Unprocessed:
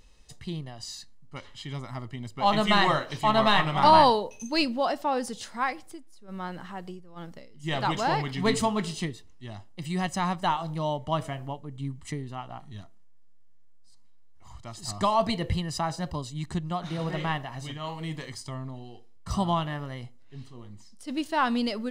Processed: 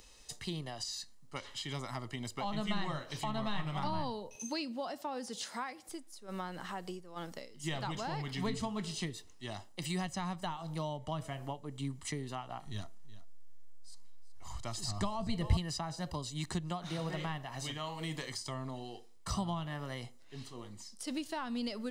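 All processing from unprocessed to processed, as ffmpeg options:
-filter_complex "[0:a]asettb=1/sr,asplit=3[s0][s1][s2];[s0]atrim=end=4.354[s3];[s1]atrim=start=4.35:end=5.89,asetpts=PTS-STARTPTS,afade=t=in:d=0.004:c=qsin,afade=t=out:st=1.536:d=0.004:c=qsin,highpass=150,acompressor=mode=upward:threshold=0.00562:ratio=2.5:attack=3.2:release=140:knee=2.83:detection=peak[s4];[s2]atrim=start=5.886[s5];[s3][s4]acrossfade=d=0.004:c1=hsin:c2=qsin[s6];[s6][s5]acrossfade=d=0.004:c1=qsin:c2=hsin,asettb=1/sr,asplit=3[s7][s8][s9];[s7]atrim=end=12.664[s10];[s8]atrim=start=12.66:end=15.57,asetpts=PTS-STARTPTS,afade=t=in:d=0.004:c=qsin,afade=t=out:st=2.906:d=0.004:c=qsin,lowshelf=f=120:g=11.5,aecho=1:1:374:0.158,atrim=end_sample=128331,asoftclip=type=hard:threshold=0.251[s11];[s9]atrim=start=15.566[s12];[s10][s11]acrossfade=d=0.004:c1=hsin:c2=qsin[s13];[s13][s12]acrossfade=d=0.004:c1=qsin:c2=hsin,acrossover=split=6000[s14][s15];[s15]acompressor=threshold=0.00355:ratio=4:attack=1:release=60[s16];[s14][s16]amix=inputs=2:normalize=0,bass=f=250:g=-9,treble=f=4000:g=6,acrossover=split=190[s17][s18];[s18]acompressor=threshold=0.01:ratio=8[s19];[s17][s19]amix=inputs=2:normalize=0,volume=1.33"

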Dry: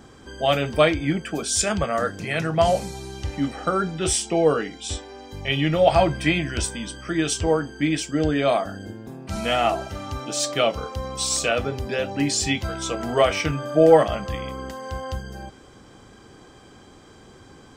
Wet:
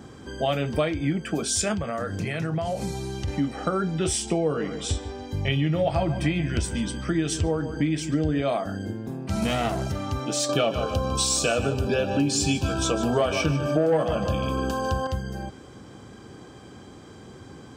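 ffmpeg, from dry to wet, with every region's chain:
-filter_complex "[0:a]asettb=1/sr,asplit=3[s0][s1][s2];[s0]atrim=end=1.744[s3];[s1]atrim=start=1.74:end=3.28,asetpts=PTS-STARTPTS,afade=t=in:d=0.004:c=qsin,afade=t=out:st=1.536:d=0.004:c=qsin,equalizer=f=100:t=o:w=0.25:g=5,acompressor=threshold=0.0447:ratio=5:attack=3.2:release=140:knee=1:detection=peak[s4];[s2]atrim=start=3.276[s5];[s3][s4]acrossfade=d=0.004:c1=hsin:c2=qsin[s6];[s6][s5]acrossfade=d=0.004:c1=qsin:c2=hsin,asettb=1/sr,asplit=3[s7][s8][s9];[s7]atrim=end=4.134[s10];[s8]atrim=start=4.13:end=8.42,asetpts=PTS-STARTPTS,afade=t=in:d=0.004:c=qsin,afade=t=out:st=4.286:d=0.004:c=qsin,lowshelf=f=140:g=7.5,asplit=2[s11][s12];[s12]adelay=142,lowpass=f=3000:p=1,volume=0.188,asplit=2[s13][s14];[s14]adelay=142,lowpass=f=3000:p=1,volume=0.38,asplit=2[s15][s16];[s16]adelay=142,lowpass=f=3000:p=1,volume=0.38,asplit=2[s17][s18];[s18]adelay=142,lowpass=f=3000:p=1,volume=0.38[s19];[s11][s13][s15][s17][s19]amix=inputs=5:normalize=0,atrim=end_sample=189189[s20];[s9]atrim=start=8.416[s21];[s10][s20]acrossfade=d=0.004:c1=hsin:c2=qsin[s22];[s22][s21]acrossfade=d=0.004:c1=qsin:c2=hsin,asettb=1/sr,asplit=3[s23][s24][s25];[s23]atrim=end=9.424[s26];[s24]atrim=start=9.42:end=9.92,asetpts=PTS-STARTPTS,afade=t=in:d=0.004:c=qsin,afade=t=out:st=0.496:d=0.004:c=qsin,highpass=56,bass=f=250:g=12,treble=f=4000:g=8,aeval=exprs='clip(val(0),-1,0.0501)':c=same[s27];[s25]atrim=start=9.916[s28];[s26][s27]acrossfade=d=0.004:c1=hsin:c2=qsin[s29];[s29][s28]acrossfade=d=0.004:c1=qsin:c2=hsin,asettb=1/sr,asplit=3[s30][s31][s32];[s30]atrim=end=10.494[s33];[s31]atrim=start=10.49:end=15.07,asetpts=PTS-STARTPTS,afade=t=in:d=0.004:c=qsin,afade=t=out:st=4.576:d=0.004:c=qsin,asuperstop=centerf=2000:order=20:qfactor=4.3,acontrast=78,aecho=1:1:150|300|450:0.251|0.0754|0.0226,atrim=end_sample=201978[s34];[s32]atrim=start=15.066[s35];[s33][s34]acrossfade=d=0.004:c1=hsin:c2=qsin[s36];[s36][s35]acrossfade=d=0.004:c1=qsin:c2=hsin,highpass=79,lowshelf=f=370:g=7,acompressor=threshold=0.0794:ratio=4"

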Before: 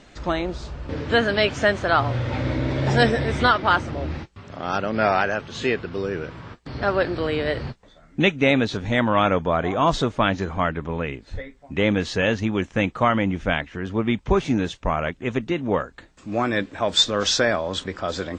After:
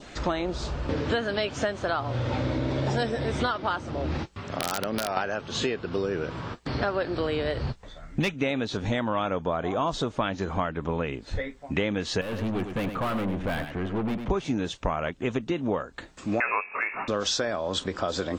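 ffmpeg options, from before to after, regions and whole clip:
-filter_complex "[0:a]asettb=1/sr,asplit=3[s0][s1][s2];[s0]atrim=end=3.904[s3];[s1]atrim=start=3.9:end=5.17,asetpts=PTS-STARTPTS,afade=t=in:d=0.004:c=qsin,afade=t=out:st=1.266:d=0.004:c=qsin,acompressor=threshold=0.0562:ratio=8:attack=3.2:release=140:knee=1:detection=peak,aeval=exprs='(mod(7.94*val(0)+1,2)-1)/7.94':c=same[s4];[s2]atrim=start=5.166[s5];[s3][s4]acrossfade=d=0.004:c1=hsin:c2=qsin[s6];[s6][s5]acrossfade=d=0.004:c1=qsin:c2=hsin,asettb=1/sr,asplit=3[s7][s8][s9];[s7]atrim=end=7.044[s10];[s8]atrim=start=7.04:end=8.34,asetpts=PTS-STARTPTS,afade=t=in:d=0.004:c=qsin,afade=t=out:st=1.296:d=0.004:c=qsin,asubboost=boost=8:cutoff=130,asoftclip=type=hard:threshold=0.237[s11];[s9]atrim=start=8.336[s12];[s10][s11]acrossfade=d=0.004:c1=hsin:c2=qsin[s13];[s13][s12]acrossfade=d=0.004:c1=qsin:c2=hsin,asettb=1/sr,asplit=3[s14][s15][s16];[s14]atrim=end=12.214[s17];[s15]atrim=start=12.21:end=14.3,asetpts=PTS-STARTPTS,afade=t=in:d=0.004:c=qsin,afade=t=out:st=2.086:d=0.004:c=qsin,aeval=exprs='(tanh(25.1*val(0)+0.35)-tanh(0.35))/25.1':c=same,equalizer=f=6100:w=0.88:g=-14,aecho=1:1:100:0.355,atrim=end_sample=92169[s18];[s16]atrim=start=14.296[s19];[s17][s18]acrossfade=d=0.004:c1=hsin:c2=qsin[s20];[s20][s19]acrossfade=d=0.004:c1=qsin:c2=hsin,asettb=1/sr,asplit=3[s21][s22][s23];[s21]atrim=end=16.404[s24];[s22]atrim=start=16.4:end=17.08,asetpts=PTS-STARTPTS,afade=t=in:d=0.004:c=qsin,afade=t=out:st=0.676:d=0.004:c=qsin,equalizer=f=2000:w=0.43:g=10.5,bandreject=f=46.7:t=h:w=4,bandreject=f=93.4:t=h:w=4,bandreject=f=140.1:t=h:w=4,bandreject=f=186.8:t=h:w=4,bandreject=f=233.5:t=h:w=4,bandreject=f=280.2:t=h:w=4,bandreject=f=326.9:t=h:w=4,bandreject=f=373.6:t=h:w=4,bandreject=f=420.3:t=h:w=4,bandreject=f=467:t=h:w=4,bandreject=f=513.7:t=h:w=4,bandreject=f=560.4:t=h:w=4,bandreject=f=607.1:t=h:w=4,bandreject=f=653.8:t=h:w=4,bandreject=f=700.5:t=h:w=4,bandreject=f=747.2:t=h:w=4,bandreject=f=793.9:t=h:w=4,bandreject=f=840.6:t=h:w=4,bandreject=f=887.3:t=h:w=4,bandreject=f=934:t=h:w=4,bandreject=f=980.7:t=h:w=4,bandreject=f=1027.4:t=h:w=4,bandreject=f=1074.1:t=h:w=4,bandreject=f=1120.8:t=h:w=4,bandreject=f=1167.5:t=h:w=4,lowpass=f=2400:t=q:w=0.5098,lowpass=f=2400:t=q:w=0.6013,lowpass=f=2400:t=q:w=0.9,lowpass=f=2400:t=q:w=2.563,afreqshift=-2800[s25];[s23]atrim=start=17.076[s26];[s24][s25]acrossfade=d=0.004:c1=hsin:c2=qsin[s27];[s27][s26]acrossfade=d=0.004:c1=qsin:c2=hsin,lowshelf=f=180:g=-4.5,acompressor=threshold=0.0316:ratio=6,adynamicequalizer=threshold=0.00251:dfrequency=2000:dqfactor=1.8:tfrequency=2000:tqfactor=1.8:attack=5:release=100:ratio=0.375:range=3:mode=cutabove:tftype=bell,volume=2"

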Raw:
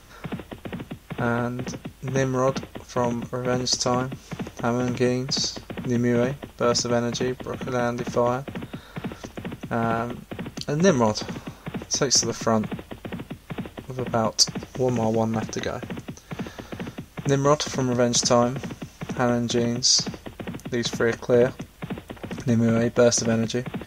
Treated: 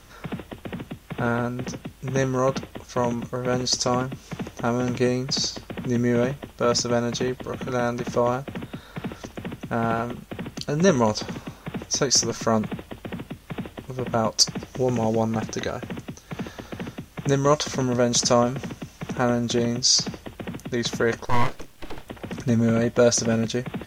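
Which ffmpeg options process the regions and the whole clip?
-filter_complex "[0:a]asettb=1/sr,asplit=3[s0][s1][s2];[s0]atrim=end=21.254[s3];[s1]atrim=start=21.25:end=22.07,asetpts=PTS-STARTPTS,afade=t=in:d=0.004:c=qsin,afade=t=out:st=0.816:d=0.004:c=qsin,aeval=exprs='abs(val(0))':c=same,asplit=2[s4][s5];[s5]adelay=29,volume=0.266[s6];[s4][s6]amix=inputs=2:normalize=0,atrim=end_sample=36162[s7];[s2]atrim=start=22.066[s8];[s3][s7]acrossfade=d=0.004:c1=hsin:c2=qsin[s9];[s9][s8]acrossfade=d=0.004:c1=qsin:c2=hsin"

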